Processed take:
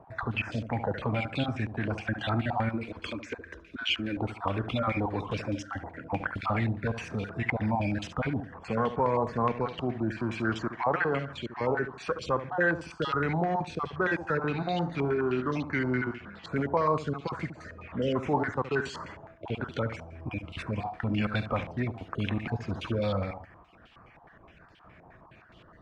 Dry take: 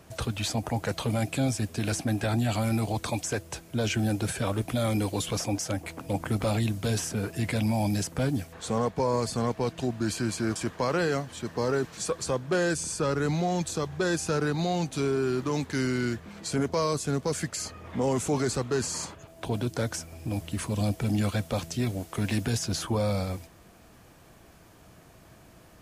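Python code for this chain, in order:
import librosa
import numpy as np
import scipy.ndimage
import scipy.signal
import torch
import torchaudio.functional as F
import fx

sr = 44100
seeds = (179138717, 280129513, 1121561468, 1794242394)

p1 = fx.spec_dropout(x, sr, seeds[0], share_pct=27)
p2 = fx.fixed_phaser(p1, sr, hz=330.0, stages=4, at=(2.69, 4.17))
p3 = fx.doubler(p2, sr, ms=35.0, db=-11.0, at=(14.52, 15.58))
p4 = p3 + fx.echo_feedback(p3, sr, ms=71, feedback_pct=30, wet_db=-10.5, dry=0)
p5 = fx.filter_held_lowpass(p4, sr, hz=9.6, low_hz=860.0, high_hz=3100.0)
y = F.gain(torch.from_numpy(p5), -2.5).numpy()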